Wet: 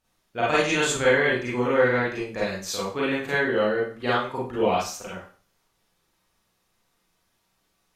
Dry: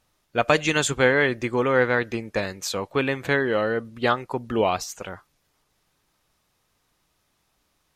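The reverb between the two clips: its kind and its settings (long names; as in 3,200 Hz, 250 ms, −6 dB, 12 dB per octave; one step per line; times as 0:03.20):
four-comb reverb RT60 0.4 s, combs from 33 ms, DRR −7.5 dB
level −9 dB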